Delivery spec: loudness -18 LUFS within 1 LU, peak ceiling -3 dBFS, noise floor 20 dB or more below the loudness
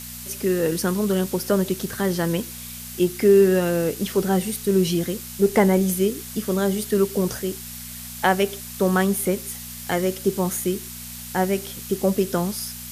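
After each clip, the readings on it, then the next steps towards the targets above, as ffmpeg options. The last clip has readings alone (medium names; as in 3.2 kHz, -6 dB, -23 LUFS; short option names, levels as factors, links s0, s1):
hum 60 Hz; highest harmonic 240 Hz; hum level -41 dBFS; noise floor -36 dBFS; noise floor target -43 dBFS; loudness -22.5 LUFS; peak level -4.5 dBFS; loudness target -18.0 LUFS
-> -af "bandreject=f=60:t=h:w=4,bandreject=f=120:t=h:w=4,bandreject=f=180:t=h:w=4,bandreject=f=240:t=h:w=4"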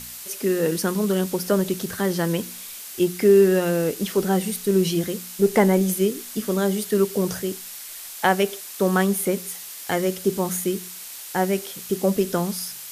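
hum not found; noise floor -38 dBFS; noise floor target -43 dBFS
-> -af "afftdn=nr=6:nf=-38"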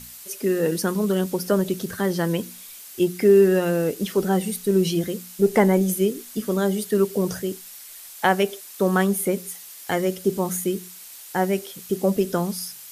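noise floor -42 dBFS; noise floor target -43 dBFS
-> -af "afftdn=nr=6:nf=-42"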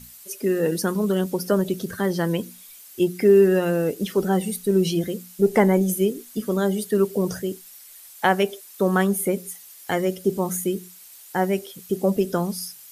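noise floor -46 dBFS; loudness -23.0 LUFS; peak level -5.0 dBFS; loudness target -18.0 LUFS
-> -af "volume=1.78,alimiter=limit=0.708:level=0:latency=1"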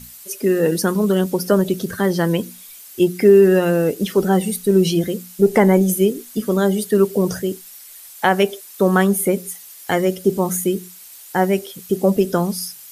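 loudness -18.0 LUFS; peak level -3.0 dBFS; noise floor -41 dBFS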